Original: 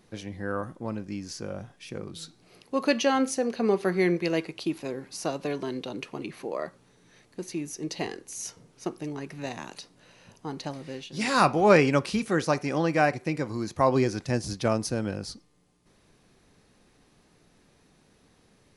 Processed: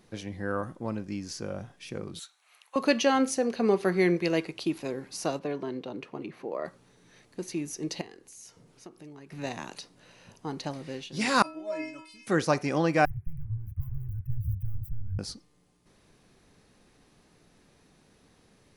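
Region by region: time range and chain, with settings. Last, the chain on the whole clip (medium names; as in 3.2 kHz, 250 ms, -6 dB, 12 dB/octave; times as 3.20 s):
2.19–2.76 s: high-pass 920 Hz 24 dB/octave + peaking EQ 4.9 kHz -14 dB 0.27 oct
5.39–6.65 s: high-pass 880 Hz 6 dB/octave + tilt EQ -4.5 dB/octave
8.01–9.32 s: compression 2:1, threshold -54 dBFS + band-stop 5.9 kHz, Q 24
11.42–12.27 s: treble shelf 9.8 kHz +4.5 dB + inharmonic resonator 310 Hz, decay 0.57 s, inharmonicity 0.008 + decay stretcher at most 99 dB/s
13.05–15.19 s: tone controls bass +7 dB, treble -11 dB + overdrive pedal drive 36 dB, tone 2.8 kHz, clips at -9 dBFS + inverse Chebyshev band-stop 240–8500 Hz, stop band 50 dB
whole clip: none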